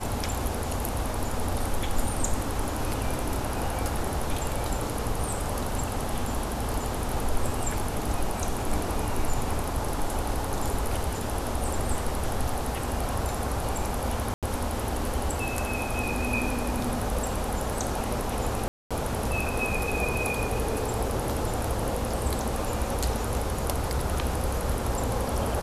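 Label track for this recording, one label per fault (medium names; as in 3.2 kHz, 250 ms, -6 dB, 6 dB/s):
14.340000	14.430000	dropout 87 ms
18.680000	18.910000	dropout 226 ms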